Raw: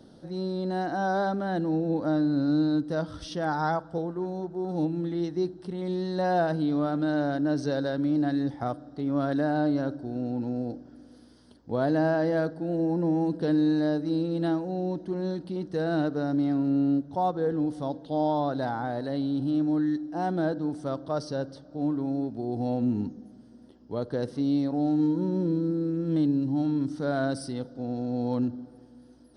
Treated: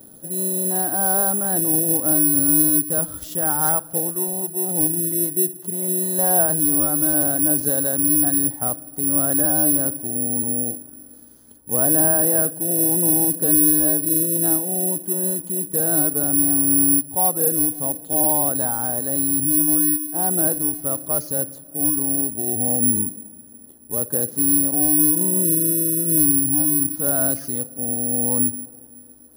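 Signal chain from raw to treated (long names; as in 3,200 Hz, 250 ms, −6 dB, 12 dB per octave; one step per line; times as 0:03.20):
high-shelf EQ 4,200 Hz −6.5 dB, from 0:03.62 +5.5 dB, from 0:04.78 −9 dB
bad sample-rate conversion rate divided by 4×, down none, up zero stuff
level +1.5 dB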